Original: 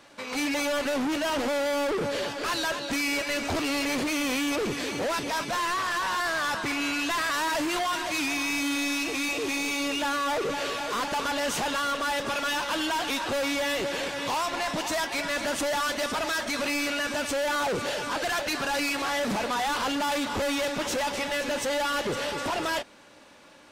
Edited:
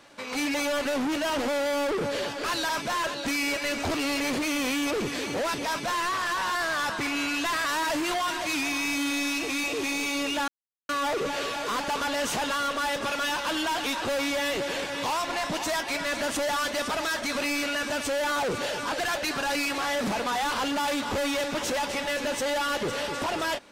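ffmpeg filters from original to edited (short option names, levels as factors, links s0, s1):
-filter_complex "[0:a]asplit=4[s0][s1][s2][s3];[s0]atrim=end=2.692[s4];[s1]atrim=start=5.318:end=5.672[s5];[s2]atrim=start=2.688:end=10.13,asetpts=PTS-STARTPTS,afade=t=out:st=7.438:d=0.004:c=hsin,apad=pad_dur=0.41[s6];[s3]atrim=start=10.13,asetpts=PTS-STARTPTS,afade=t=in:d=0.004:c=hsin[s7];[s4][s5]acrossfade=d=0.004:c1=hsin:c2=hsin[s8];[s6][s7]concat=n=2:v=0:a=1[s9];[s8][s9]acrossfade=d=0.004:c1=hsin:c2=hsin"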